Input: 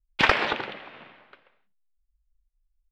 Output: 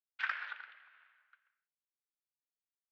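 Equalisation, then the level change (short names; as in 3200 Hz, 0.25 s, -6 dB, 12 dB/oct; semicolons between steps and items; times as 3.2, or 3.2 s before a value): band-pass 1500 Hz, Q 5; air absorption 64 m; differentiator; +4.5 dB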